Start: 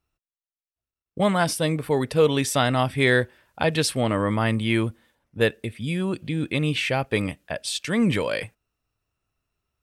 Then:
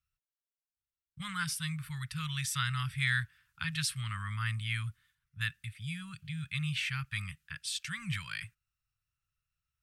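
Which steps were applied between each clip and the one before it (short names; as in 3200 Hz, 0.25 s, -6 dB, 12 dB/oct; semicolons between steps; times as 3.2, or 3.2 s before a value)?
elliptic band-stop 150–1300 Hz, stop band 40 dB; gain -7.5 dB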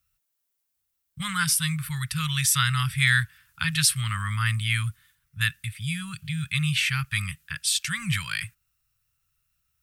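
high shelf 8500 Hz +11.5 dB; gain +9 dB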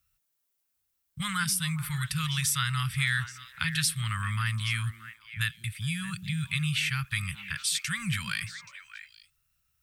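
compressor 2:1, threshold -29 dBFS, peak gain reduction 7.5 dB; delay with a stepping band-pass 0.207 s, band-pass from 270 Hz, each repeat 1.4 oct, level -5 dB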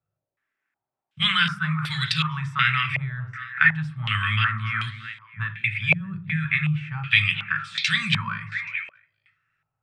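reverb RT60 0.40 s, pre-delay 3 ms, DRR 6 dB; stepped low-pass 2.7 Hz 600–4000 Hz; gain +5.5 dB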